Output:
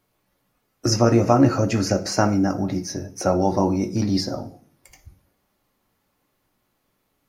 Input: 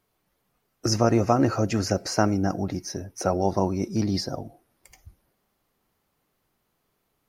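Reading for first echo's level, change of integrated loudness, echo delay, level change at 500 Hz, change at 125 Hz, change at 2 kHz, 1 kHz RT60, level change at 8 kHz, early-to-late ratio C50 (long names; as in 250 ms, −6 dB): no echo audible, +4.0 dB, no echo audible, +3.5 dB, +4.0 dB, +3.0 dB, 0.40 s, +3.0 dB, 14.5 dB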